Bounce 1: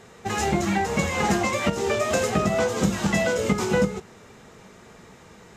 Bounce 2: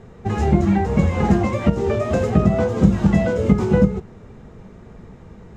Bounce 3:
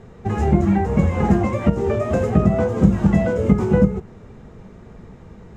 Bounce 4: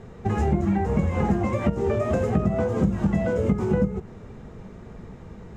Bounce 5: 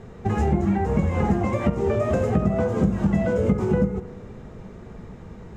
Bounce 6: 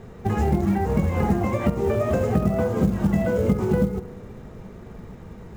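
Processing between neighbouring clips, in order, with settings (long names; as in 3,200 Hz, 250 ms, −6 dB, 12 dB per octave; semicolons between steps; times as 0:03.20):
spectral tilt −4 dB per octave; level −1 dB
dynamic equaliser 4,200 Hz, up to −7 dB, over −49 dBFS, Q 1.1
downward compressor 3 to 1, threshold −20 dBFS, peak gain reduction 9.5 dB
tape delay 71 ms, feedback 79%, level −14.5 dB, low-pass 2,400 Hz; level +1 dB
floating-point word with a short mantissa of 4 bits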